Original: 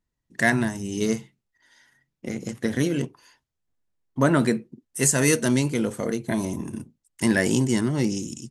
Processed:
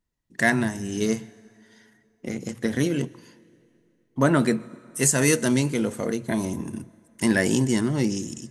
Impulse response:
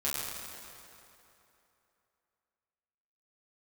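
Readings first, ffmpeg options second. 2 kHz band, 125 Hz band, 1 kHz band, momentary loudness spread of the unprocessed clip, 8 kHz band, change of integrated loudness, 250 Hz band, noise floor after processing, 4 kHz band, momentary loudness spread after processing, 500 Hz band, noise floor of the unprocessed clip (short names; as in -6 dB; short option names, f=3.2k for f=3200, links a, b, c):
0.0 dB, -0.5 dB, 0.0 dB, 15 LU, 0.0 dB, 0.0 dB, 0.0 dB, -67 dBFS, 0.0 dB, 15 LU, 0.0 dB, -82 dBFS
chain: -filter_complex "[0:a]bandreject=f=60:t=h:w=6,bandreject=f=120:t=h:w=6,asplit=2[a][b];[1:a]atrim=start_sample=2205,adelay=121[c];[b][c]afir=irnorm=-1:irlink=0,volume=-29.5dB[d];[a][d]amix=inputs=2:normalize=0"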